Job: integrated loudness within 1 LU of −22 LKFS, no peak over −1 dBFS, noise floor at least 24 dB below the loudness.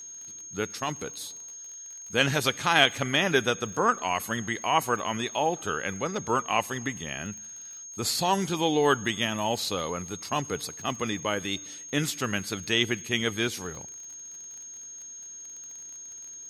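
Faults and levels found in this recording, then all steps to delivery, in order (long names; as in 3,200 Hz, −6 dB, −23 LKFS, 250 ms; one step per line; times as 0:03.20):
crackle rate 36 per second; interfering tone 6,500 Hz; level of the tone −40 dBFS; integrated loudness −27.5 LKFS; sample peak −4.5 dBFS; target loudness −22.0 LKFS
→ click removal
notch filter 6,500 Hz, Q 30
level +5.5 dB
brickwall limiter −1 dBFS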